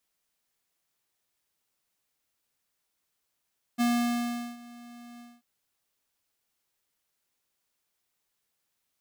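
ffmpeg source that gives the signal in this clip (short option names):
-f lavfi -i "aevalsrc='0.0631*(2*lt(mod(239*t,1),0.5)-1)':d=1.638:s=44100,afade=t=in:d=0.029,afade=t=out:st=0.029:d=0.758:silence=0.0708,afade=t=out:st=1.42:d=0.218"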